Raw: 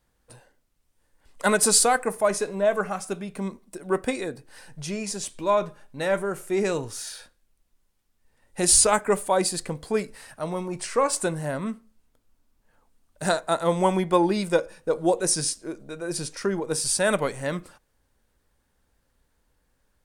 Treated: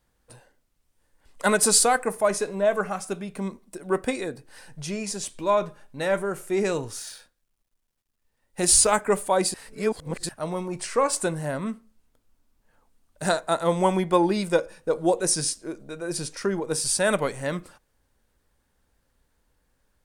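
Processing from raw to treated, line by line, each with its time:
6.99–8.96 G.711 law mismatch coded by A
9.54–10.29 reverse

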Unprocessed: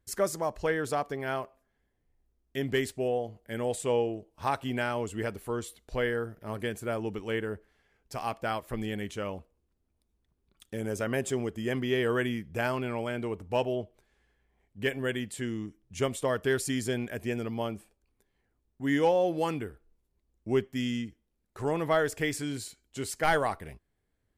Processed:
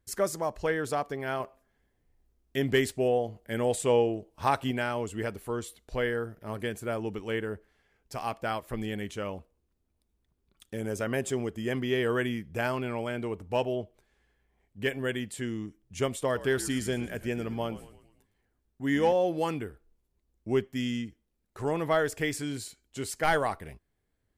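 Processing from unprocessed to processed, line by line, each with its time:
1.4–4.71 gain +3.5 dB
16.19–19.13 frequency-shifting echo 0.111 s, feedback 50%, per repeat -62 Hz, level -15.5 dB

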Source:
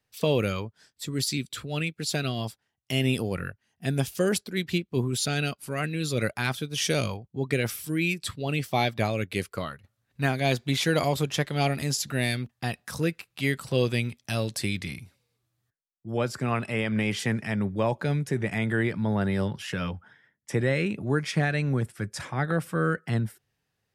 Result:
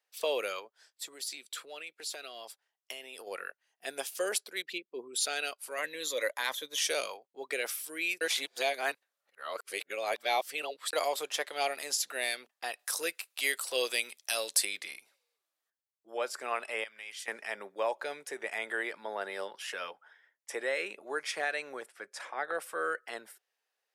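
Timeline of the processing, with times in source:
0.59–3.27 compressor, threshold -31 dBFS
4.62–5.21 formant sharpening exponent 1.5
5.78–6.79 ripple EQ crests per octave 1.1, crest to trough 10 dB
8.21–10.93 reverse
12.79–14.65 high shelf 3400 Hz +10 dB
16.84–17.28 passive tone stack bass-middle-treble 5-5-5
21.86–22.55 high shelf 5000 Hz -9 dB
whole clip: HPF 480 Hz 24 dB/oct; dynamic EQ 9900 Hz, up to +4 dB, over -52 dBFS, Q 1.2; gain -3.5 dB

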